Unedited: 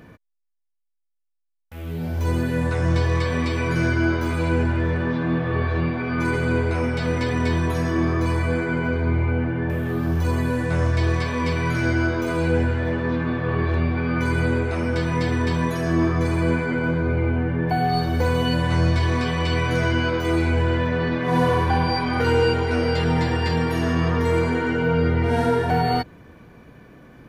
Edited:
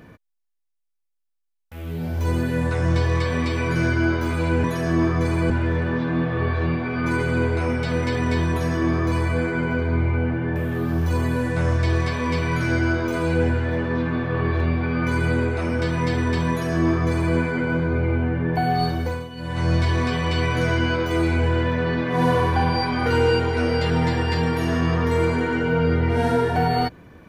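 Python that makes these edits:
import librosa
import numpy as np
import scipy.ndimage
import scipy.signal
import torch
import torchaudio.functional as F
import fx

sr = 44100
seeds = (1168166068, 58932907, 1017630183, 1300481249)

y = fx.edit(x, sr, fx.duplicate(start_s=15.64, length_s=0.86, to_s=4.64),
    fx.fade_down_up(start_s=18.01, length_s=0.89, db=-16.0, fade_s=0.41), tone=tone)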